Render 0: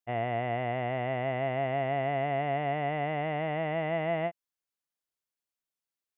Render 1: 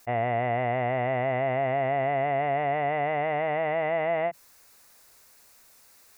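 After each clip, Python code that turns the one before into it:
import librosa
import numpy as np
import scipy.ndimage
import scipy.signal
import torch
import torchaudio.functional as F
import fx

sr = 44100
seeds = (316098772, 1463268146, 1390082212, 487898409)

y = fx.graphic_eq_31(x, sr, hz=(160, 315, 3150), db=(-11, -7, -10))
y = fx.env_flatten(y, sr, amount_pct=50)
y = y * 10.0 ** (3.5 / 20.0)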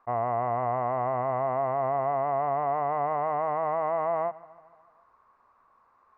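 y = fx.lowpass_res(x, sr, hz=1100.0, q=9.2)
y = fx.echo_feedback(y, sr, ms=148, feedback_pct=58, wet_db=-20)
y = y * 10.0 ** (-5.5 / 20.0)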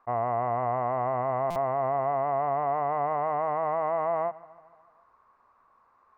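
y = fx.buffer_glitch(x, sr, at_s=(1.5,), block=256, repeats=9)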